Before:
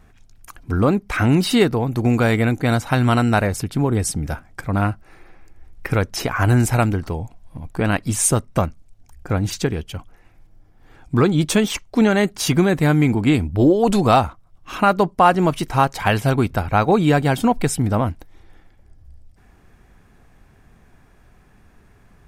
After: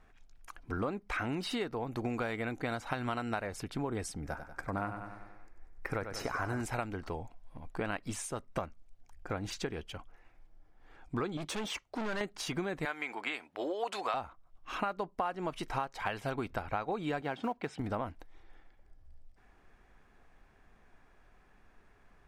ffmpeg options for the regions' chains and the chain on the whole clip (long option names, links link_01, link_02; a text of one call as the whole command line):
ffmpeg -i in.wav -filter_complex "[0:a]asettb=1/sr,asplit=3[link_01][link_02][link_03];[link_01]atrim=end=4.204[link_04];[link_02]atrim=start=4.2:end=6.61,asetpts=PTS-STARTPTS,afade=type=in:duration=0.004:curve=qsin,afade=type=out:start_time=2.406:duration=0.004:curve=qsin,equalizer=frequency=3100:width=1.6:gain=-8,aecho=1:1:95|190|285|380|475|570:0.316|0.177|0.0992|0.0555|0.0311|0.0174,atrim=end_sample=106281[link_05];[link_03]atrim=start=6.606[link_06];[link_04][link_05]acrossfade=duration=0.004:curve1=hsin:curve2=qsin[link_07];[link_07][link_06]acrossfade=duration=0.004:curve1=qsin:curve2=hsin,asettb=1/sr,asplit=3[link_08][link_09][link_10];[link_08]atrim=end=11.374[link_11];[link_09]atrim=start=11.37:end=12.21,asetpts=PTS-STARTPTS,afade=type=in:duration=0.004:curve=qsin,afade=type=out:start_time=0.836:duration=0.004:curve=qsin,highpass=52,asoftclip=type=hard:threshold=-20dB[link_12];[link_10]atrim=start=12.206[link_13];[link_11][link_12]acrossfade=duration=0.004:curve1=hsin:curve2=qsin[link_14];[link_14][link_13]acrossfade=duration=0.004:curve1=qsin:curve2=hsin,asettb=1/sr,asplit=3[link_15][link_16][link_17];[link_15]atrim=end=12.854[link_18];[link_16]atrim=start=12.85:end=14.14,asetpts=PTS-STARTPTS,afade=type=in:duration=0.004:curve=qsin,afade=type=out:start_time=1.286:duration=0.004:curve=qsin,highpass=630,equalizer=frequency=2100:width=0.71:gain=5[link_19];[link_17]atrim=start=14.136[link_20];[link_18][link_19]acrossfade=duration=0.004:curve1=hsin:curve2=qsin[link_21];[link_21][link_20]acrossfade=duration=0.004:curve1=qsin:curve2=hsin,asettb=1/sr,asplit=3[link_22][link_23][link_24];[link_22]atrim=end=17.214[link_25];[link_23]atrim=start=17.21:end=17.8,asetpts=PTS-STARTPTS,afade=type=in:duration=0.004:curve=qsin,afade=type=out:start_time=0.586:duration=0.004:curve=qsin,highpass=130,lowpass=3500,acrusher=bits=8:mode=log:mix=0:aa=0.000001[link_26];[link_24]atrim=start=17.796[link_27];[link_25][link_26]acrossfade=duration=0.004:curve1=hsin:curve2=qsin[link_28];[link_28][link_27]acrossfade=duration=0.004:curve1=qsin:curve2=hsin,equalizer=frequency=110:width=0.43:gain=-12,acompressor=threshold=-25dB:ratio=6,aemphasis=mode=reproduction:type=50kf,volume=-6dB" out.wav